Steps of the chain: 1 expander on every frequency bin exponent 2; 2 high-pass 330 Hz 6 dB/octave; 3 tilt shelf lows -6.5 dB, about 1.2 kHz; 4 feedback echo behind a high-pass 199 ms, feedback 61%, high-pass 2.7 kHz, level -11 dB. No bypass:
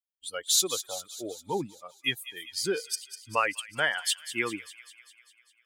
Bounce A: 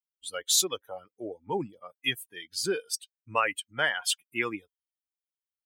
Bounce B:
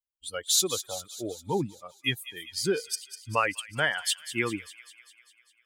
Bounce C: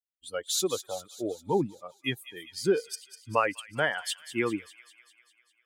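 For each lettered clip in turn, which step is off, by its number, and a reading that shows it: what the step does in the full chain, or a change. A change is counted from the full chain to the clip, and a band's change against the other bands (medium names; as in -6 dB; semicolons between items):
4, echo-to-direct -16.5 dB to none; 2, 125 Hz band +8.0 dB; 3, 8 kHz band -9.0 dB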